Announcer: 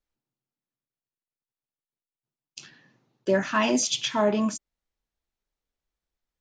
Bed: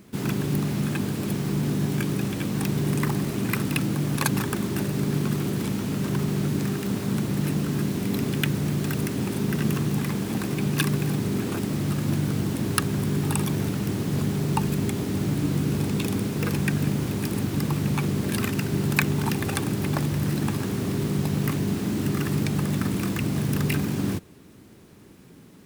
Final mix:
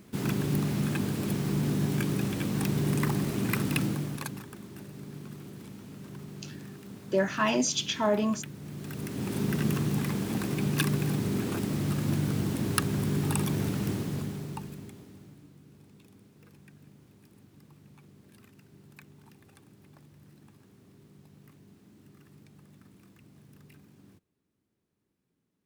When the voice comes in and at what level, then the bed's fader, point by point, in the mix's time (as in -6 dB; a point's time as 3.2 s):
3.85 s, -3.0 dB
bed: 3.85 s -3 dB
4.45 s -18 dB
8.57 s -18 dB
9.38 s -3.5 dB
13.9 s -3.5 dB
15.54 s -30.5 dB